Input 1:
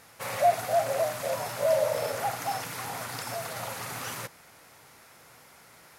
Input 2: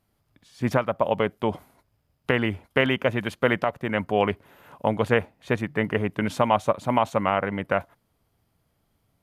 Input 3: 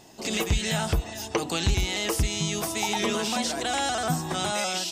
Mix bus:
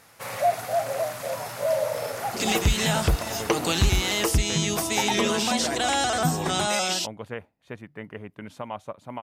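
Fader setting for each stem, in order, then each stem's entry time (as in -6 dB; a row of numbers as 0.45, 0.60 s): 0.0, -14.0, +3.0 dB; 0.00, 2.20, 2.15 s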